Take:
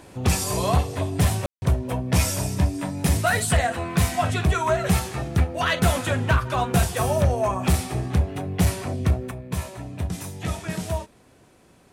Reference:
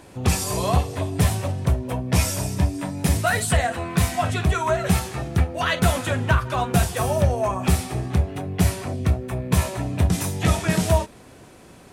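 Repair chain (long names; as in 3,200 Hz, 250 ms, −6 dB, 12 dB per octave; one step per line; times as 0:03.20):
clipped peaks rebuilt −12.5 dBFS
ambience match 0:01.46–0:01.62
level correction +8.5 dB, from 0:09.31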